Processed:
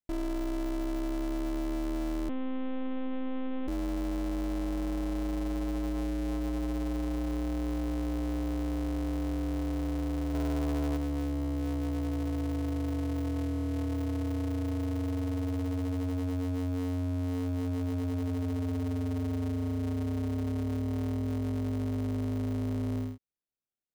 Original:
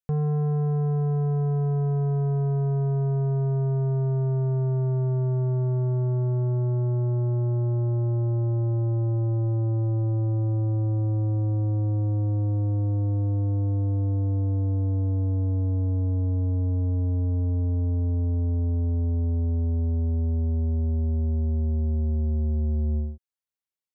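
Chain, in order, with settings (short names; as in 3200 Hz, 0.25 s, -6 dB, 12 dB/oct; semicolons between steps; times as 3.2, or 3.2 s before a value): 10.34–10.97 low shelf 330 Hz +6.5 dB; in parallel at -2 dB: sample-rate reducer 1000 Hz, jitter 0%; on the sum: ring modulator 180 Hz; soft clip -21 dBFS, distortion -15 dB; 2.29–3.68 monotone LPC vocoder at 8 kHz 260 Hz; gain -6.5 dB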